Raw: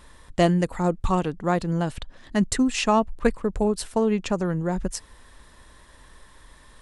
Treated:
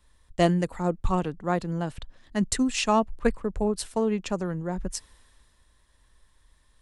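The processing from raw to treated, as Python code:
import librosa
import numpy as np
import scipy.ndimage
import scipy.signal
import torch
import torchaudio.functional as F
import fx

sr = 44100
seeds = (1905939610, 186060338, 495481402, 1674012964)

y = fx.band_widen(x, sr, depth_pct=40)
y = y * 10.0 ** (-3.5 / 20.0)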